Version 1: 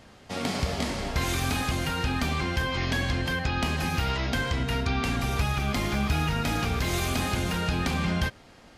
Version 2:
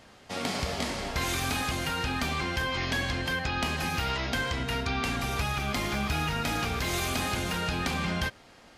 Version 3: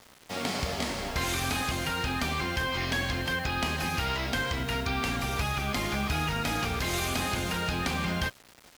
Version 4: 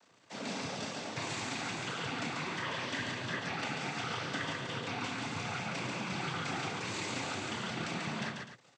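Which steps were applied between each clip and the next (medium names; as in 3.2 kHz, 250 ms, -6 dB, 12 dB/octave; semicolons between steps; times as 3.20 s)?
bass shelf 320 Hz -6 dB
word length cut 8-bit, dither none
noise-vocoded speech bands 16; loudspeakers at several distances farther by 11 m -9 dB, 48 m -4 dB, 86 m -12 dB; trim -8 dB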